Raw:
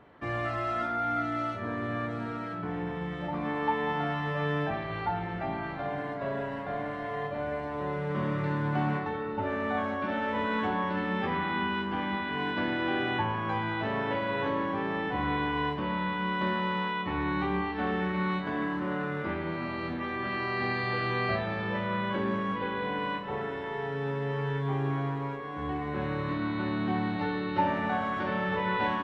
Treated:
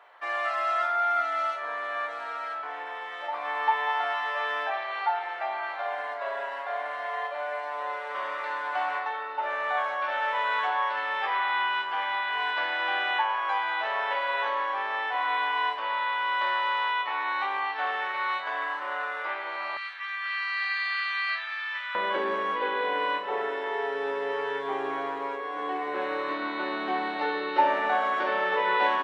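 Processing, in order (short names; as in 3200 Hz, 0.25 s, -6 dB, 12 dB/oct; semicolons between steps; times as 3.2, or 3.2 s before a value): HPF 670 Hz 24 dB/oct, from 19.77 s 1400 Hz, from 21.95 s 390 Hz; gain +5.5 dB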